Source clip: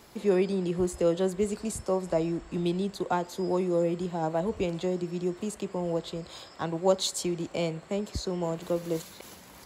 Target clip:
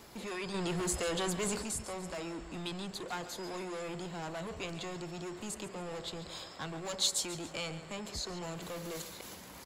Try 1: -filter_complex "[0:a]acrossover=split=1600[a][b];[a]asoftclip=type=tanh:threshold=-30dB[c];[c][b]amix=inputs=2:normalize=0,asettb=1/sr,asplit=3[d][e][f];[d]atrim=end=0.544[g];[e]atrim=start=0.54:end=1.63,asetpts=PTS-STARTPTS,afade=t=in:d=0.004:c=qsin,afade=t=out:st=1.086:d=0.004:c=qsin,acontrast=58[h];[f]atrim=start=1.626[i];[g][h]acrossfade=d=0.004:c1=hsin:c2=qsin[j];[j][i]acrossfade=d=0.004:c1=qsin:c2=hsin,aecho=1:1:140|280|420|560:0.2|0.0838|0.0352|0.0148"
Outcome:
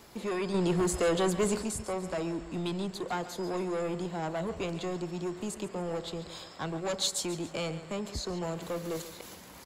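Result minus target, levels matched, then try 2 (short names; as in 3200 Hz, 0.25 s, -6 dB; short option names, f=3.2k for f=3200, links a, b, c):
soft clip: distortion -5 dB
-filter_complex "[0:a]acrossover=split=1600[a][b];[a]asoftclip=type=tanh:threshold=-40dB[c];[c][b]amix=inputs=2:normalize=0,asettb=1/sr,asplit=3[d][e][f];[d]atrim=end=0.544[g];[e]atrim=start=0.54:end=1.63,asetpts=PTS-STARTPTS,afade=t=in:d=0.004:c=qsin,afade=t=out:st=1.086:d=0.004:c=qsin,acontrast=58[h];[f]atrim=start=1.626[i];[g][h]acrossfade=d=0.004:c1=hsin:c2=qsin[j];[j][i]acrossfade=d=0.004:c1=qsin:c2=hsin,aecho=1:1:140|280|420|560:0.2|0.0838|0.0352|0.0148"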